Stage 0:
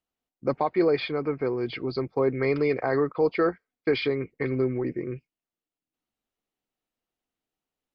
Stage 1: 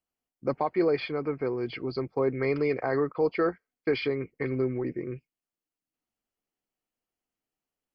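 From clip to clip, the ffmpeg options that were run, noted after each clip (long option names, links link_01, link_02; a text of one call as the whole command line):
ffmpeg -i in.wav -af "bandreject=frequency=3700:width=5.9,volume=-2.5dB" out.wav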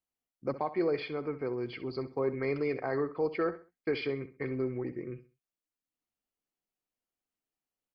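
ffmpeg -i in.wav -af "aecho=1:1:65|130|195:0.2|0.0599|0.018,volume=-5dB" out.wav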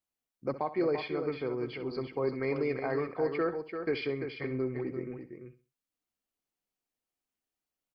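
ffmpeg -i in.wav -af "aecho=1:1:342:0.422" out.wav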